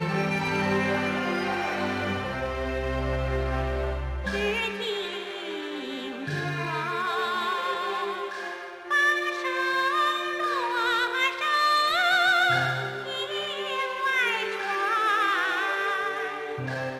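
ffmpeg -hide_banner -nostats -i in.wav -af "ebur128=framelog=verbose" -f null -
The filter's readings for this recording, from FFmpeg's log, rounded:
Integrated loudness:
  I:         -26.1 LUFS
  Threshold: -36.1 LUFS
Loudness range:
  LRA:         6.2 LU
  Threshold: -46.1 LUFS
  LRA low:   -29.5 LUFS
  LRA high:  -23.3 LUFS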